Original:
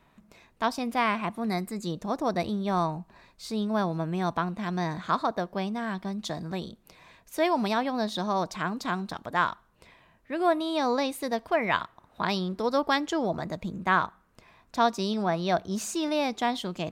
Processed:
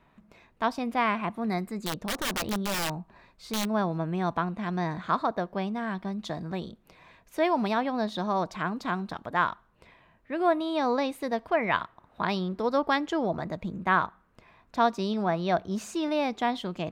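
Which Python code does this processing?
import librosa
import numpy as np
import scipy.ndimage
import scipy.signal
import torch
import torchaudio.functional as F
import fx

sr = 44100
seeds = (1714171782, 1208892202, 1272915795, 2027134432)

y = fx.bass_treble(x, sr, bass_db=0, treble_db=-9)
y = fx.overflow_wrap(y, sr, gain_db=23.5, at=(1.66, 3.64), fade=0.02)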